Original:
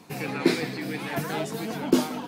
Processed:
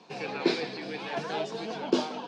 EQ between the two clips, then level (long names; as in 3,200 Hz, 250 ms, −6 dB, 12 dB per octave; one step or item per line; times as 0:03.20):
loudspeaker in its box 270–5,400 Hz, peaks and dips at 280 Hz −8 dB, 1,300 Hz −5 dB, 2,000 Hz −8 dB
0.0 dB